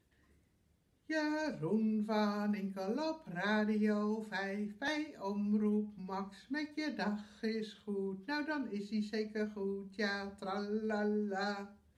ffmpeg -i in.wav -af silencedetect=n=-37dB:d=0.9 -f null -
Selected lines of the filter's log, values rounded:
silence_start: 0.00
silence_end: 1.10 | silence_duration: 1.10